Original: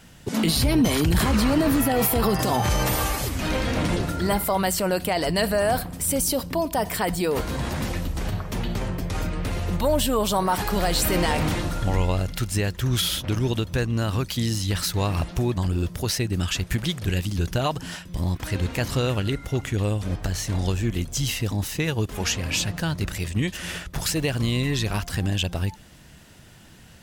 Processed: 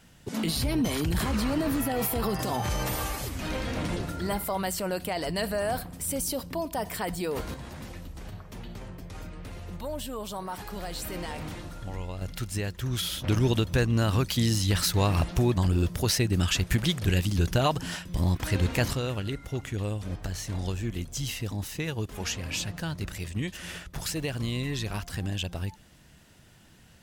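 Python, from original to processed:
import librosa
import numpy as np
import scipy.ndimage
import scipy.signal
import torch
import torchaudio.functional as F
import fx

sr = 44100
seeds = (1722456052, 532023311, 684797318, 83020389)

y = fx.gain(x, sr, db=fx.steps((0.0, -7.0), (7.54, -13.5), (12.22, -7.0), (13.22, 0.0), (18.93, -7.0)))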